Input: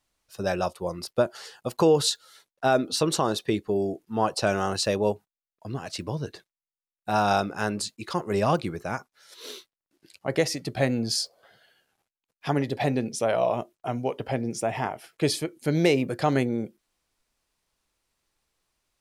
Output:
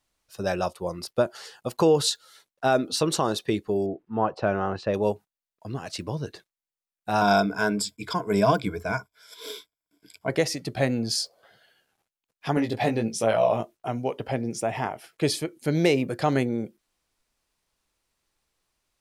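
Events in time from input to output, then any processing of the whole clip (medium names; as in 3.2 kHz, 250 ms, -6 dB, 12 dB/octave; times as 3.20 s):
3.86–4.94 s: low-pass 1.8 kHz
7.21–10.30 s: rippled EQ curve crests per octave 1.7, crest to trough 14 dB
12.55–13.88 s: doubling 18 ms -3.5 dB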